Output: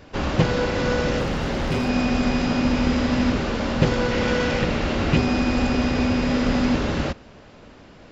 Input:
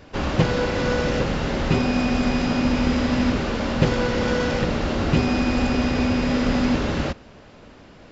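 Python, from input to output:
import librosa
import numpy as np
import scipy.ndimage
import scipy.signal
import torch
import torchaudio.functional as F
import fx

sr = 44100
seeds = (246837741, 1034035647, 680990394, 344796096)

y = fx.clip_hard(x, sr, threshold_db=-19.0, at=(1.18, 1.89))
y = fx.peak_eq(y, sr, hz=2400.0, db=4.0, octaves=0.89, at=(4.11, 5.17))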